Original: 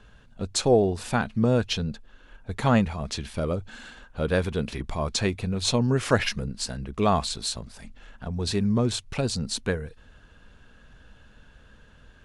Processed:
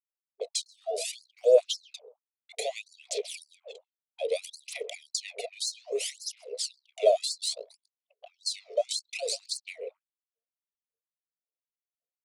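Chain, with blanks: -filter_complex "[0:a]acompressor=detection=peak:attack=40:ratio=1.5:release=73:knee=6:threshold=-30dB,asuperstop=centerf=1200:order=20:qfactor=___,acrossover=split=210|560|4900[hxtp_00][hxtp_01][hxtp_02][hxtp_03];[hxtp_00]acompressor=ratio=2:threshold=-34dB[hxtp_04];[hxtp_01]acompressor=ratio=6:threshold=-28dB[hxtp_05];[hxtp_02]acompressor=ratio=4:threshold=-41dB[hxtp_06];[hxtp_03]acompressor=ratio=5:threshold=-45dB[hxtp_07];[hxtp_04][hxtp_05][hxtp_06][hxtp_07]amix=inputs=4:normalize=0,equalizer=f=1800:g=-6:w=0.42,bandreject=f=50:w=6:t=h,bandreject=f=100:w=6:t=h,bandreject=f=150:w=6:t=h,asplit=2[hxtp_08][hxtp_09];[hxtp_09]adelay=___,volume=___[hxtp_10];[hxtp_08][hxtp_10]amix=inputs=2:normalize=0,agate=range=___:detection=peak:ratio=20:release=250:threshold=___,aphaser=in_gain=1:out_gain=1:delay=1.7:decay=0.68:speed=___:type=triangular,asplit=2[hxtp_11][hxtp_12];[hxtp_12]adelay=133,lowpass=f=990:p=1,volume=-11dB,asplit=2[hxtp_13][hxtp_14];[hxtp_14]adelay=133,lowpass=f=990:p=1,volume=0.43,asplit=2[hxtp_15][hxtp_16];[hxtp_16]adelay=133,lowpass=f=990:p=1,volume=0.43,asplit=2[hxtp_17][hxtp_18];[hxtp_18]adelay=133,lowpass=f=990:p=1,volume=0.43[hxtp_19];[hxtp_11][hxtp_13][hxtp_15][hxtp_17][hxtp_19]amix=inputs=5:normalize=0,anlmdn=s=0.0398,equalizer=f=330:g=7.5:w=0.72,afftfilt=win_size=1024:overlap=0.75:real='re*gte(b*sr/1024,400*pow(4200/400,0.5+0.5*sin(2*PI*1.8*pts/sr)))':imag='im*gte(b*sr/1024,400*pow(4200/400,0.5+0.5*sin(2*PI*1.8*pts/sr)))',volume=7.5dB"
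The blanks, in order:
0.93, 29, -12dB, -18dB, -44dB, 0.63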